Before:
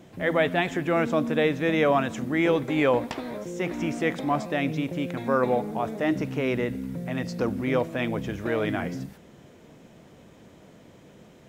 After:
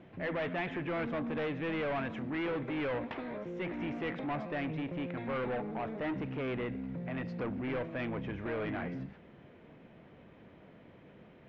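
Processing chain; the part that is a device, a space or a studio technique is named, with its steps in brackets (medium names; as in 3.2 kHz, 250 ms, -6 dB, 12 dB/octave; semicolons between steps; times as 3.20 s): overdriven synthesiser ladder filter (saturation -27 dBFS, distortion -7 dB; four-pole ladder low-pass 3.2 kHz, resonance 25%); trim +1 dB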